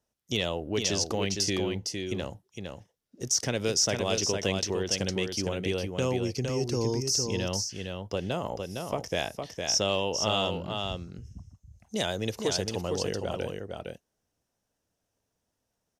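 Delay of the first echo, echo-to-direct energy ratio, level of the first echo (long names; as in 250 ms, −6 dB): 459 ms, −5.0 dB, −5.0 dB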